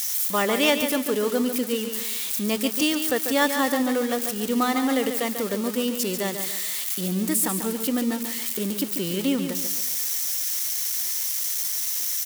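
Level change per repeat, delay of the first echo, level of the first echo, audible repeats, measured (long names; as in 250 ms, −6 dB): −8.5 dB, 142 ms, −8.0 dB, 4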